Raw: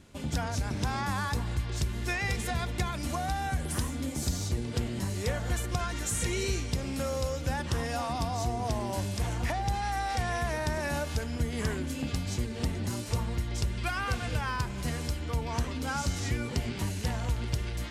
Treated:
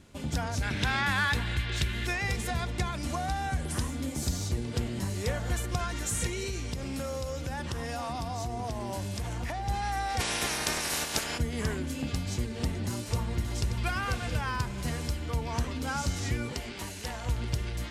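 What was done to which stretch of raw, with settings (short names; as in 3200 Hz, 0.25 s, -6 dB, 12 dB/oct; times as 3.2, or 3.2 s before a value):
0.62–2.07 band shelf 2400 Hz +10.5 dB
2.6–3.89 LPF 11000 Hz
6.27–9.69 compressor 4:1, threshold -30 dBFS
10.19–11.37 spectral limiter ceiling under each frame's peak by 28 dB
12.71–13.54 echo throw 0.58 s, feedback 60%, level -8.5 dB
16.53–17.26 bell 120 Hz -12.5 dB 2.2 oct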